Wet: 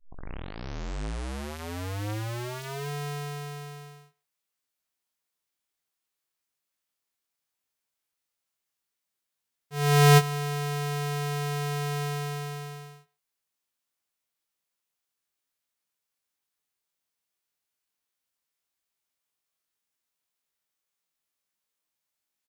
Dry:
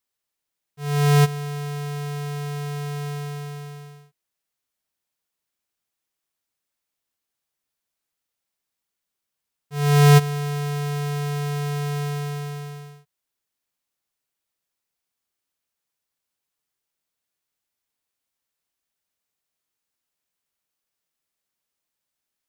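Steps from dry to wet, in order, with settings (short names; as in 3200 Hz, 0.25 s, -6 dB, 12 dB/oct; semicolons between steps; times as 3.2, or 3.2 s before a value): tape start at the beginning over 2.88 s; low shelf 320 Hz -4 dB; doubler 19 ms -6 dB; speakerphone echo 0.13 s, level -22 dB; formant shift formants +5 st; gain -2.5 dB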